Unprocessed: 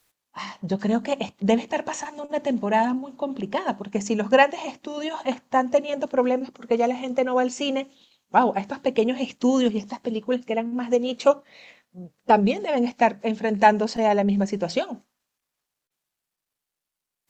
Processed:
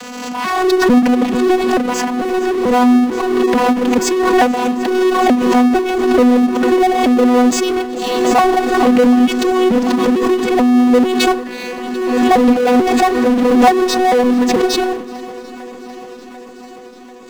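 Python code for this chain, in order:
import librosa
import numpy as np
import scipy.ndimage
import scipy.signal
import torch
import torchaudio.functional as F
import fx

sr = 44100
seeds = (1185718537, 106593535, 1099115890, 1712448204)

p1 = fx.vocoder_arp(x, sr, chord='bare fifth', root=59, every_ms=441)
p2 = fx.low_shelf(p1, sr, hz=170.0, db=7.5)
p3 = fx.level_steps(p2, sr, step_db=12)
p4 = p2 + F.gain(torch.from_numpy(p3), 1.0).numpy()
p5 = fx.power_curve(p4, sr, exponent=0.5)
p6 = p5 + fx.echo_swing(p5, sr, ms=742, ratio=1.5, feedback_pct=67, wet_db=-18, dry=0)
p7 = fx.pre_swell(p6, sr, db_per_s=31.0)
y = F.gain(torch.from_numpy(p7), -3.5).numpy()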